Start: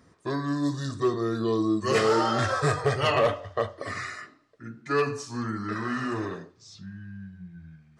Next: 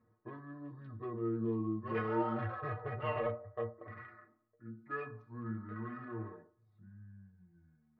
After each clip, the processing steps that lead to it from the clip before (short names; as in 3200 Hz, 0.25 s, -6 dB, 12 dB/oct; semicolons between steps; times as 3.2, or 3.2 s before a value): Wiener smoothing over 15 samples; LPF 2500 Hz 24 dB/oct; metallic resonator 110 Hz, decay 0.21 s, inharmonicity 0.008; gain -4.5 dB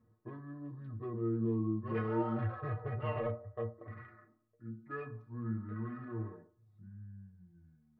low shelf 340 Hz +9.5 dB; gain -4 dB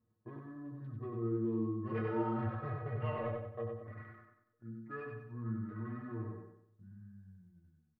gate -60 dBFS, range -7 dB; feedback echo 94 ms, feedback 40%, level -4 dB; gain -2.5 dB